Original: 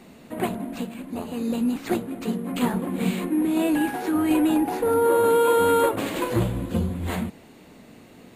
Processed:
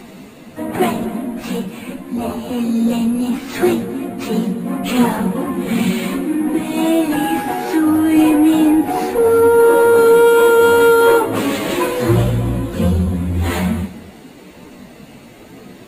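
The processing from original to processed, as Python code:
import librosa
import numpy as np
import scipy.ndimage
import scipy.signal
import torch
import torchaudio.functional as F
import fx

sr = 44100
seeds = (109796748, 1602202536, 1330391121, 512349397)

p1 = fx.stretch_vocoder_free(x, sr, factor=1.9)
p2 = 10.0 ** (-28.5 / 20.0) * np.tanh(p1 / 10.0 ** (-28.5 / 20.0))
p3 = p1 + (p2 * 10.0 ** (-7.0 / 20.0))
p4 = p3 + 10.0 ** (-18.5 / 20.0) * np.pad(p3, (int(248 * sr / 1000.0), 0))[:len(p3)]
y = p4 * 10.0 ** (9.0 / 20.0)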